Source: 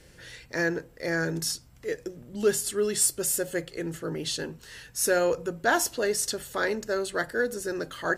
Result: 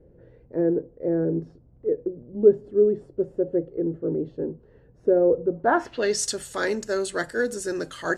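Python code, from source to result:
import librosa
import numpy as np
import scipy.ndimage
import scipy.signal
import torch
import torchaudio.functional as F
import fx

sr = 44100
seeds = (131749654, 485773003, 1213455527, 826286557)

y = fx.filter_sweep_lowpass(x, sr, from_hz=470.0, to_hz=8500.0, start_s=5.48, end_s=6.27, q=1.7)
y = fx.dynamic_eq(y, sr, hz=290.0, q=0.99, threshold_db=-35.0, ratio=4.0, max_db=5)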